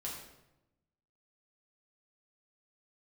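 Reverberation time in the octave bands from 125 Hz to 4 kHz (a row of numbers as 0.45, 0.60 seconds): 1.3, 1.2, 0.95, 0.85, 0.75, 0.65 seconds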